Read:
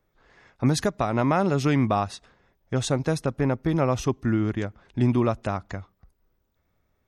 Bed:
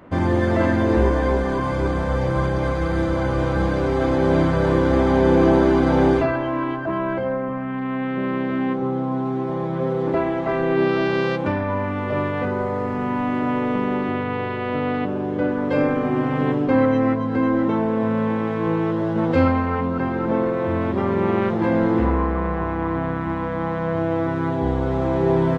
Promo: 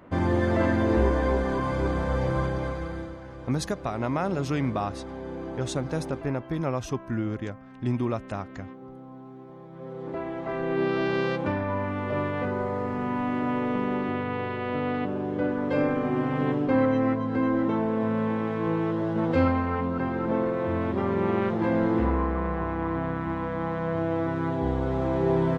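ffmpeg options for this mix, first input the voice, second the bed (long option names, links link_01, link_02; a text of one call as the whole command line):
ffmpeg -i stem1.wav -i stem2.wav -filter_complex "[0:a]adelay=2850,volume=-5.5dB[link_01];[1:a]volume=11dB,afade=type=out:start_time=2.3:duration=0.89:silence=0.158489,afade=type=in:start_time=9.7:duration=1.42:silence=0.16788[link_02];[link_01][link_02]amix=inputs=2:normalize=0" out.wav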